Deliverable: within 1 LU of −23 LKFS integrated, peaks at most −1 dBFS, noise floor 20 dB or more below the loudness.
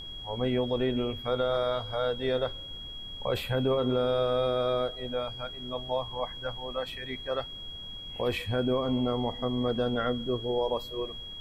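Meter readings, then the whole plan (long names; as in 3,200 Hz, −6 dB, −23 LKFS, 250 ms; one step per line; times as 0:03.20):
interfering tone 3,300 Hz; level of the tone −40 dBFS; background noise floor −42 dBFS; target noise floor −51 dBFS; integrated loudness −30.5 LKFS; sample peak −17.5 dBFS; target loudness −23.0 LKFS
→ notch filter 3,300 Hz, Q 30
noise reduction from a noise print 9 dB
level +7.5 dB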